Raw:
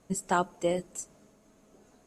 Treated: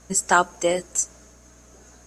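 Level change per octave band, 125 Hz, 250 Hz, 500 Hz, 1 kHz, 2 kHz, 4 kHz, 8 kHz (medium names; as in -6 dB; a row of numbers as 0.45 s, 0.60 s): +1.0 dB, +3.5 dB, +6.5 dB, +9.0 dB, +14.0 dB, +11.0 dB, +15.0 dB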